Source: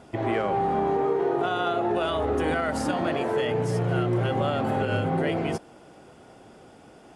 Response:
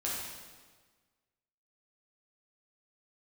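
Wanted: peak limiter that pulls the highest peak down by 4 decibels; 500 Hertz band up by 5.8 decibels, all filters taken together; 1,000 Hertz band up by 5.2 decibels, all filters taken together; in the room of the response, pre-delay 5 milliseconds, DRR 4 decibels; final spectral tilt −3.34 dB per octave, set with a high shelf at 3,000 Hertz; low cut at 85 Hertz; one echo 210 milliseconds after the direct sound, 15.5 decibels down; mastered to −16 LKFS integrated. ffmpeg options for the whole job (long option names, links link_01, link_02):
-filter_complex "[0:a]highpass=85,equalizer=frequency=500:width_type=o:gain=6.5,equalizer=frequency=1000:width_type=o:gain=5,highshelf=frequency=3000:gain=-6.5,alimiter=limit=-13.5dB:level=0:latency=1,aecho=1:1:210:0.168,asplit=2[link_01][link_02];[1:a]atrim=start_sample=2205,adelay=5[link_03];[link_02][link_03]afir=irnorm=-1:irlink=0,volume=-8.5dB[link_04];[link_01][link_04]amix=inputs=2:normalize=0,volume=4.5dB"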